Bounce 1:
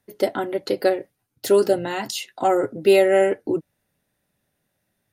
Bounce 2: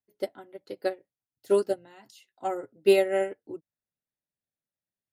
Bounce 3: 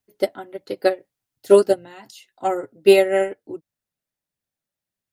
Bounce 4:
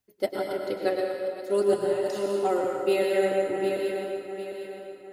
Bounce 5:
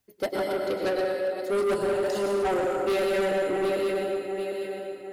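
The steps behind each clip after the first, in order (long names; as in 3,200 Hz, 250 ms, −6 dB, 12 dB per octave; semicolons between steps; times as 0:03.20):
expander for the loud parts 2.5 to 1, over −26 dBFS; level −3 dB
in parallel at +2.5 dB: speech leveller within 4 dB 2 s; on the sum: flanger 1.6 Hz, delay 0.3 ms, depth 1.5 ms, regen +82%; level +5.5 dB
feedback delay that plays each chunk backwards 377 ms, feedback 61%, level −14 dB; reversed playback; downward compressor 6 to 1, threshold −23 dBFS, peak gain reduction 15.5 dB; reversed playback; dense smooth reverb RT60 2 s, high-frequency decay 0.75×, pre-delay 90 ms, DRR 0 dB
soft clipping −27.5 dBFS, distortion −8 dB; level +5.5 dB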